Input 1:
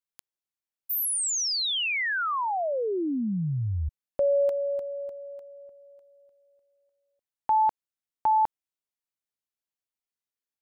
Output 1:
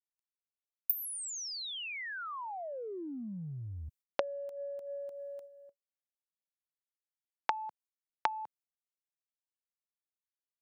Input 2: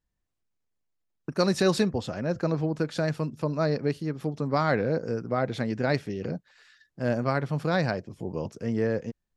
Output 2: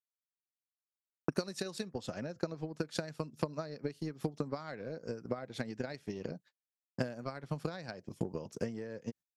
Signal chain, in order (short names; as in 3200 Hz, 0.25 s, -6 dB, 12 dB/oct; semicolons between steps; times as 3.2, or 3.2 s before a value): gate -46 dBFS, range -56 dB; HPF 120 Hz 12 dB/oct; high shelf 3800 Hz +9.5 dB; compressor 16:1, threshold -36 dBFS; transient shaper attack +11 dB, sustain -3 dB; gain -3 dB